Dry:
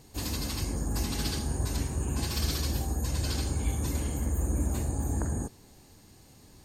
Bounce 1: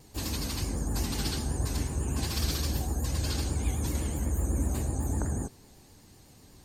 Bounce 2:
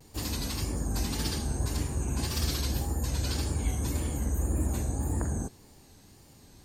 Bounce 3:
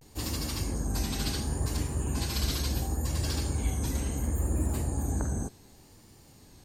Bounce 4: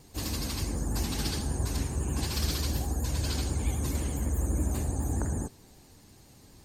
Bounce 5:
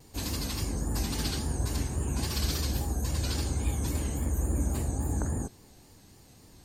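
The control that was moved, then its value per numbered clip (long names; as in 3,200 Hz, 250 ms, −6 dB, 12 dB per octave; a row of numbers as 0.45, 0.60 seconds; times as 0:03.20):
pitch vibrato, speed: 8, 1.8, 0.7, 12, 3.6 Hertz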